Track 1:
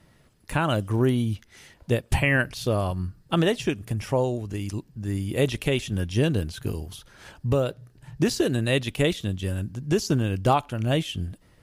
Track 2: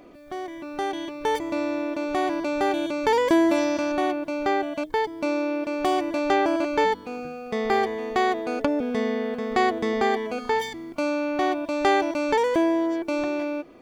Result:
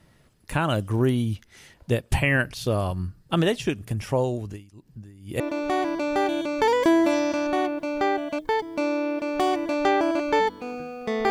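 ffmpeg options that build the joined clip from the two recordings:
ffmpeg -i cue0.wav -i cue1.wav -filter_complex "[0:a]asettb=1/sr,asplit=3[link_01][link_02][link_03];[link_01]atrim=end=4.474[link_04];[link_02]atrim=start=4.47:end=5.4,asetpts=PTS-STARTPTS,afade=type=in:duration=0.004:curve=qsin,afade=type=out:start_time=0.926:duration=0.004:curve=qsin,aeval=exprs='val(0)*pow(10,-22*(0.5-0.5*cos(2*PI*2.2*n/s))/20)':channel_layout=same[link_05];[link_03]atrim=start=5.396[link_06];[link_04][link_05]acrossfade=duration=0.004:curve1=hsin:curve2=qsin[link_07];[link_07][link_06]acrossfade=duration=0.004:curve1=qsin:curve2=hsin,apad=whole_dur=11.3,atrim=end=11.3,atrim=end=5.402[link_08];[1:a]atrim=start=1.848:end=7.75[link_09];[link_08][link_09]acrossfade=duration=0.004:curve1=hsin:curve2=hsin" out.wav

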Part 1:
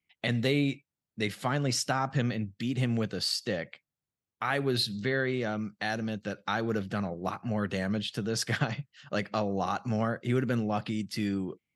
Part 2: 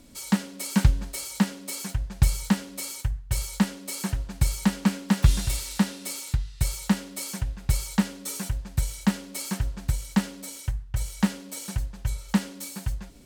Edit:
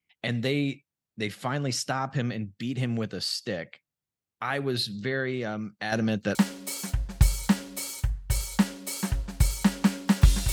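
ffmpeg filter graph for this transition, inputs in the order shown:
ffmpeg -i cue0.wav -i cue1.wav -filter_complex "[0:a]asettb=1/sr,asplit=3[link_01][link_02][link_03];[link_01]atrim=end=5.924[link_04];[link_02]atrim=start=5.92:end=6.35,asetpts=PTS-STARTPTS,afade=type=in:duration=0.004:curve=qsin,afade=type=out:start_time=0.426:duration=0.004:curve=qsin,acontrast=87[link_05];[link_03]atrim=start=6.346[link_06];[link_04][link_05]acrossfade=duration=0.004:curve1=hsin:curve2=qsin[link_07];[link_07][link_06]acrossfade=duration=0.004:curve1=qsin:curve2=hsin,apad=whole_dur=10.52,atrim=end=10.52,atrim=end=6.352[link_08];[1:a]atrim=start=1.358:end=5.53[link_09];[link_08][link_09]acrossfade=duration=0.004:curve1=hsin:curve2=hsin" out.wav

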